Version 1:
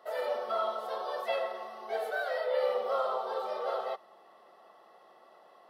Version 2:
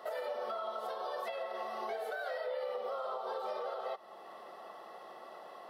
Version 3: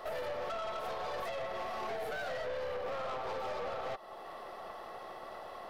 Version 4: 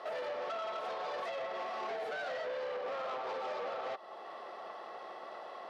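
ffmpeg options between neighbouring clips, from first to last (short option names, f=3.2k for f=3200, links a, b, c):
-af "acompressor=threshold=-37dB:ratio=6,alimiter=level_in=13.5dB:limit=-24dB:level=0:latency=1:release=393,volume=-13.5dB,volume=8dB"
-af "aeval=exprs='(tanh(112*val(0)+0.45)-tanh(0.45))/112':c=same,volume=6dB"
-af "highpass=270,lowpass=5.8k"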